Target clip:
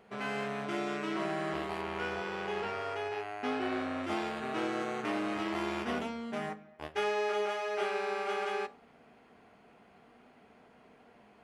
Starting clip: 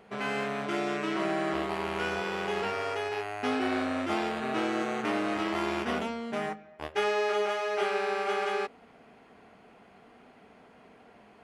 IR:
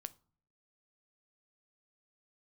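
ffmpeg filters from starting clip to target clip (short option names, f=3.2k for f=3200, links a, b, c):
-filter_complex "[0:a]asettb=1/sr,asplit=3[a][b][c];[a]atrim=end=1.814[d];[b]atrim=start=1.81:end=4.04,asetpts=PTS-STARTPTS,afade=t=in:d=0.004:c=qsin,afade=t=out:st=2.226:d=0.004:c=qsin,highshelf=f=6.4k:g=-8.5[e];[c]atrim=start=4.036[f];[d][e]acrossfade=d=0.004:c1=hsin:c2=qsin[g];[g][f]acrossfade=d=0.004:c1=qsin:c2=hsin[h];[1:a]atrim=start_sample=2205[i];[h][i]afir=irnorm=-1:irlink=0"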